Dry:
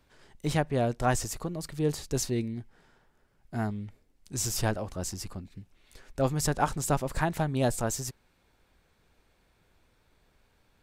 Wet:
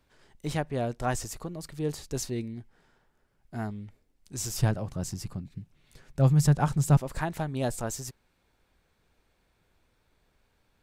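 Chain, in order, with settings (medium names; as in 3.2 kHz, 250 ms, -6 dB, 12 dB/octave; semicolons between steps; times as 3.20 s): 4.62–6.97 s: peaking EQ 140 Hz +14.5 dB 0.84 oct; trim -3 dB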